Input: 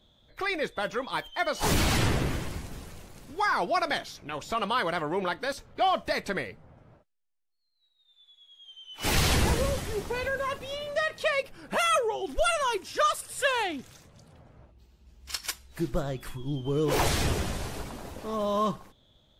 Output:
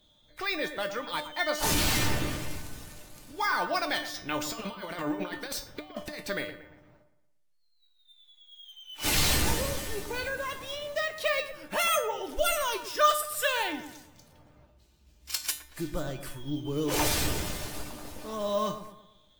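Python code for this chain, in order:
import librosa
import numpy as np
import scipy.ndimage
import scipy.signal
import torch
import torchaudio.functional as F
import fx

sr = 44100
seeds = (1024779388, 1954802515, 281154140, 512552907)

y = fx.high_shelf(x, sr, hz=2800.0, db=8.0)
y = fx.over_compress(y, sr, threshold_db=-32.0, ratio=-0.5, at=(4.14, 6.19))
y = fx.comb_fb(y, sr, f0_hz=300.0, decay_s=0.35, harmonics='all', damping=0.0, mix_pct=80)
y = fx.echo_wet_lowpass(y, sr, ms=116, feedback_pct=42, hz=1900.0, wet_db=-10.5)
y = np.repeat(y[::2], 2)[:len(y)]
y = y * librosa.db_to_amplitude(7.5)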